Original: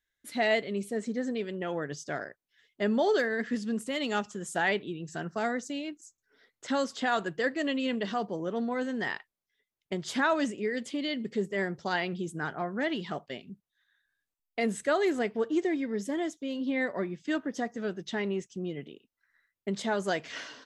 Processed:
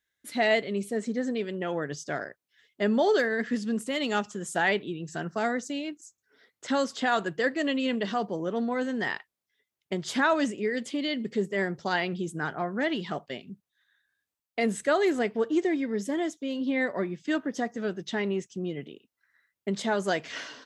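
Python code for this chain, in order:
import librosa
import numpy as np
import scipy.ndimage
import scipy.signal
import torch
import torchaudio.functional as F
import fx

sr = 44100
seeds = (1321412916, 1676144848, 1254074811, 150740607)

y = scipy.signal.sosfilt(scipy.signal.butter(2, 68.0, 'highpass', fs=sr, output='sos'), x)
y = F.gain(torch.from_numpy(y), 2.5).numpy()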